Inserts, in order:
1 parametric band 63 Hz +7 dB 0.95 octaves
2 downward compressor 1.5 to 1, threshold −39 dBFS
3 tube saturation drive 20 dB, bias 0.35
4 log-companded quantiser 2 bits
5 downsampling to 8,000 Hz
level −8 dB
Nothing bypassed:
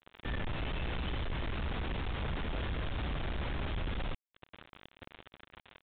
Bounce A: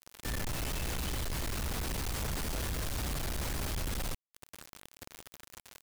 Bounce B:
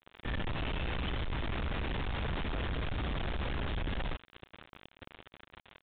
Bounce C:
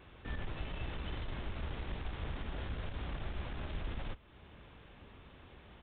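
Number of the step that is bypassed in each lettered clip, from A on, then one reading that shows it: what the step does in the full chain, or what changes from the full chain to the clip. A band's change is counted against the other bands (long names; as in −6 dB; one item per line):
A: 5, 4 kHz band +3.5 dB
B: 2, average gain reduction 5.5 dB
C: 4, distortion level −6 dB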